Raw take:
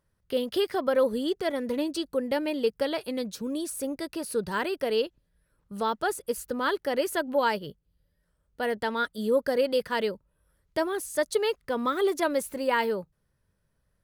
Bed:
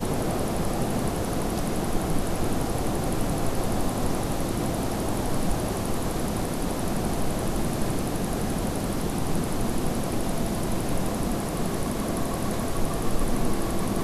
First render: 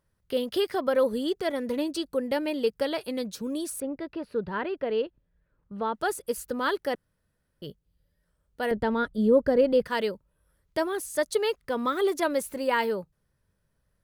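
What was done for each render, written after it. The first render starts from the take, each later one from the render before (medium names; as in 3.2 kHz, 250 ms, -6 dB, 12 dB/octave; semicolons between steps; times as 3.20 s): 3.80–5.94 s: distance through air 390 m; 6.95–7.62 s: room tone; 8.71–9.86 s: tilt EQ -3.5 dB/octave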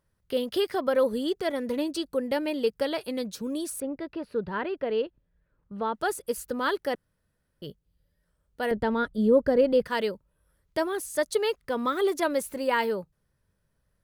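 no audible change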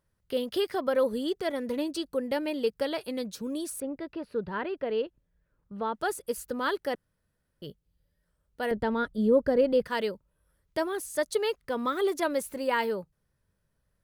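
trim -2 dB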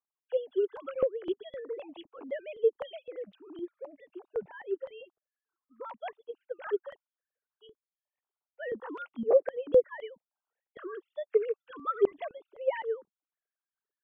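formants replaced by sine waves; stepped phaser 3.9 Hz 520–2100 Hz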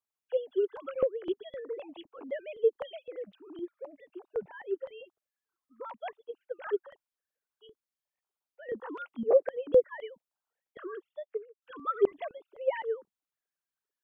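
6.82–8.69 s: compression 3:1, threshold -48 dBFS; 10.92–11.62 s: studio fade out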